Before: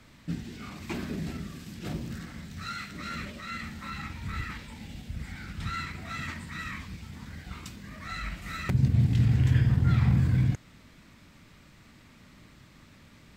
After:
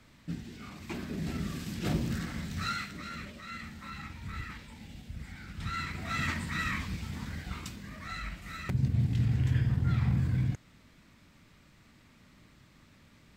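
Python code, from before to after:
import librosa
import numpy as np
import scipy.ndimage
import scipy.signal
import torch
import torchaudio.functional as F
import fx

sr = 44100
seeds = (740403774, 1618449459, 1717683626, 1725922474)

y = fx.gain(x, sr, db=fx.line((1.08, -4.0), (1.49, 4.5), (2.64, 4.5), (3.1, -5.0), (5.46, -5.0), (6.25, 4.5), (7.17, 4.5), (8.47, -5.0)))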